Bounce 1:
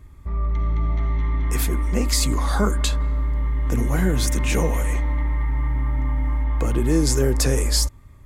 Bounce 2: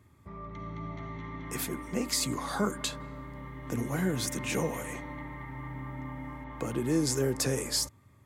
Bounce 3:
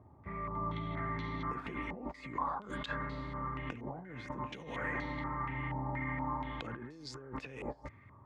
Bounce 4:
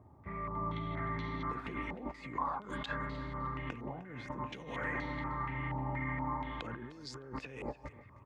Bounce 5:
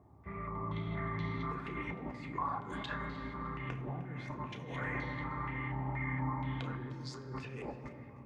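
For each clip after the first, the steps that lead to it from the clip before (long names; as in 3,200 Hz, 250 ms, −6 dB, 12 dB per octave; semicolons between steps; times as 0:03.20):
high-pass filter 100 Hz 24 dB per octave; level −7 dB
compressor whose output falls as the input rises −39 dBFS, ratio −1; low-pass on a step sequencer 4.2 Hz 790–4,400 Hz; level −3.5 dB
repeating echo 306 ms, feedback 26%, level −18 dB
flanger 2 Hz, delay 4.2 ms, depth 7.1 ms, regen −69%; on a send at −5.5 dB: convolution reverb RT60 3.6 s, pre-delay 3 ms; on the sum: level +2.5 dB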